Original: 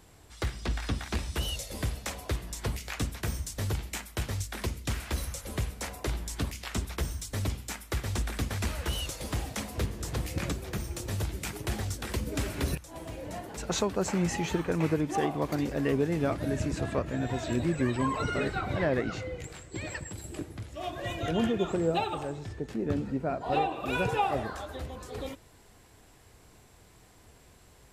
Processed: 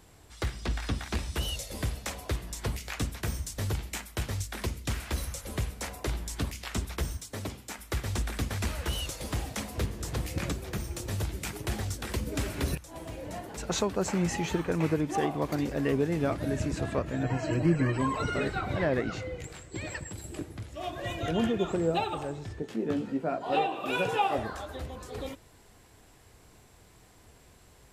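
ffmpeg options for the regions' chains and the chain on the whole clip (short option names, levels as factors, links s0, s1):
-filter_complex "[0:a]asettb=1/sr,asplit=3[s0][s1][s2];[s0]atrim=end=7.174[s3];[s1]atrim=start=7.17:end=7.79,asetpts=PTS-STARTPTS,afade=t=in:d=0.004:c=qsin,afade=t=out:st=0.616:d=0.004:c=qsin,highpass=f=350:p=1,tiltshelf=f=900:g=3.5[s4];[s2]atrim=start=7.786[s5];[s3][s4]acrossfade=d=0.004:c1=hsin:c2=qsin[s6];[s6][s5]acrossfade=d=0.004:c1=qsin:c2=hsin,asettb=1/sr,asplit=3[s7][s8][s9];[s7]atrim=end=17.234[s10];[s8]atrim=start=17.23:end=17.98,asetpts=PTS-STARTPTS,afade=t=in:d=0.004:c=qsin,afade=t=out:st=0.746:d=0.004:c=qsin,asuperstop=centerf=3600:order=12:qfactor=5.6,aemphasis=mode=reproduction:type=cd,aecho=1:1:6.5:0.94,atrim=end_sample=33075[s11];[s9]atrim=start=17.976[s12];[s10][s11]acrossfade=d=0.004:c1=hsin:c2=qsin[s13];[s13][s12]acrossfade=d=0.004:c1=qsin:c2=hsin,asettb=1/sr,asplit=3[s14][s15][s16];[s14]atrim=end=22.624[s17];[s15]atrim=start=22.62:end=24.38,asetpts=PTS-STARTPTS,afade=t=in:d=0.004:c=qsin,afade=t=out:st=1.756:d=0.004:c=qsin,highpass=180,equalizer=f=3100:w=5.4:g=5,asplit=2[s18][s19];[s19]adelay=18,volume=0.422[s20];[s18][s20]amix=inputs=2:normalize=0,atrim=end_sample=77616[s21];[s16]atrim=start=24.376[s22];[s17][s21]acrossfade=d=0.004:c1=hsin:c2=qsin[s23];[s23][s22]acrossfade=d=0.004:c1=qsin:c2=hsin"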